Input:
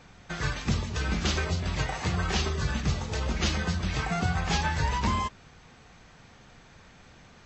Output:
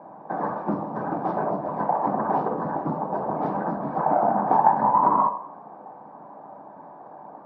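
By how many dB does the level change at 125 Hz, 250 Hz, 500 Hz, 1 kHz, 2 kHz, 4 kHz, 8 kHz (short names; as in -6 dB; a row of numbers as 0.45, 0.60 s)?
-8.0 dB, +4.0 dB, +10.5 dB, +13.0 dB, -8.0 dB, under -30 dB, n/a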